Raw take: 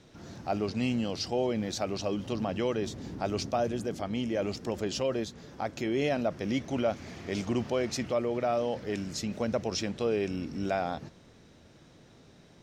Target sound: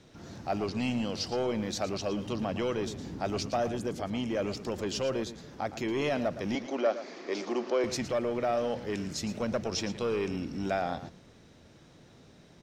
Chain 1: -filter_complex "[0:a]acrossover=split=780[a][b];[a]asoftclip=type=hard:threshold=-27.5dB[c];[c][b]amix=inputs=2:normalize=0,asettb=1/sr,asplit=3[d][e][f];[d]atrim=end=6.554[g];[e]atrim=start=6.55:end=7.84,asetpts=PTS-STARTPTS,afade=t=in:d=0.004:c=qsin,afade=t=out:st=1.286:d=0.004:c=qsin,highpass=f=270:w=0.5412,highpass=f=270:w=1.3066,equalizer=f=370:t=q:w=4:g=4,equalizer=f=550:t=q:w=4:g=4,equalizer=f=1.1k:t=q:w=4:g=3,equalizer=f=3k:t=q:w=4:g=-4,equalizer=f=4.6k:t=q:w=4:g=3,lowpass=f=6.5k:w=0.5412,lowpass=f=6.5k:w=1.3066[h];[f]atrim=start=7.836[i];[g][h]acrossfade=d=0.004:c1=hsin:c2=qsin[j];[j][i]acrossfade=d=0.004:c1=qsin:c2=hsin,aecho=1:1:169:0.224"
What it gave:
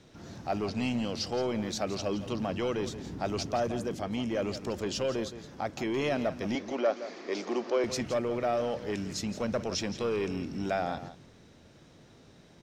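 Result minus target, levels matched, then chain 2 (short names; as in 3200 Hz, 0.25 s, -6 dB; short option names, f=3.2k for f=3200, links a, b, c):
echo 56 ms late
-filter_complex "[0:a]acrossover=split=780[a][b];[a]asoftclip=type=hard:threshold=-27.5dB[c];[c][b]amix=inputs=2:normalize=0,asettb=1/sr,asplit=3[d][e][f];[d]atrim=end=6.554[g];[e]atrim=start=6.55:end=7.84,asetpts=PTS-STARTPTS,afade=t=in:d=0.004:c=qsin,afade=t=out:st=1.286:d=0.004:c=qsin,highpass=f=270:w=0.5412,highpass=f=270:w=1.3066,equalizer=f=370:t=q:w=4:g=4,equalizer=f=550:t=q:w=4:g=4,equalizer=f=1.1k:t=q:w=4:g=3,equalizer=f=3k:t=q:w=4:g=-4,equalizer=f=4.6k:t=q:w=4:g=3,lowpass=f=6.5k:w=0.5412,lowpass=f=6.5k:w=1.3066[h];[f]atrim=start=7.836[i];[g][h]acrossfade=d=0.004:c1=hsin:c2=qsin[j];[j][i]acrossfade=d=0.004:c1=qsin:c2=hsin,aecho=1:1:113:0.224"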